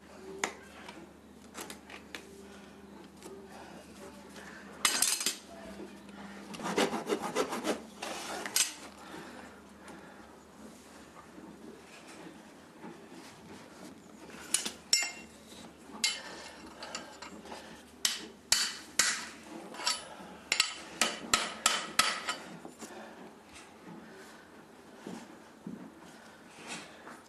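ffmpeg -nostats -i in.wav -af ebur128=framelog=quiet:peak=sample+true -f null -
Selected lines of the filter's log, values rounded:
Integrated loudness:
  I:         -32.1 LUFS
  Threshold: -45.9 LUFS
Loudness range:
  LRA:        18.7 LU
  Threshold: -55.5 LUFS
  LRA low:   -50.1 LUFS
  LRA high:  -31.5 LUFS
Sample peak:
  Peak:      -12.9 dBFS
True peak:
  Peak:      -12.2 dBFS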